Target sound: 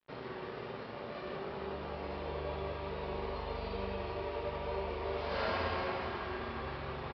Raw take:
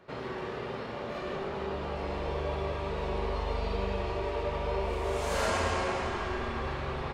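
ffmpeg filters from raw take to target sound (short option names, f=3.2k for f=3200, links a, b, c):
-af "highpass=68,aresample=11025,aeval=exprs='sgn(val(0))*max(abs(val(0))-0.00282,0)':c=same,aresample=44100,volume=-4.5dB"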